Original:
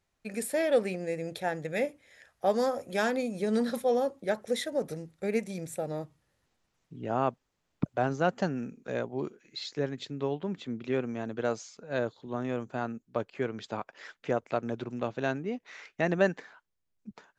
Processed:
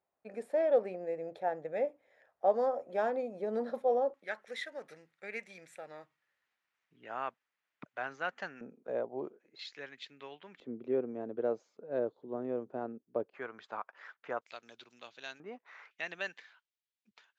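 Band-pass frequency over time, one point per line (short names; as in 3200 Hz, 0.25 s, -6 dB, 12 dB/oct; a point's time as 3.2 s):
band-pass, Q 1.5
670 Hz
from 4.14 s 1900 Hz
from 8.61 s 610 Hz
from 9.59 s 2300 Hz
from 10.6 s 440 Hz
from 13.34 s 1200 Hz
from 14.41 s 4100 Hz
from 15.4 s 1100 Hz
from 15.91 s 3100 Hz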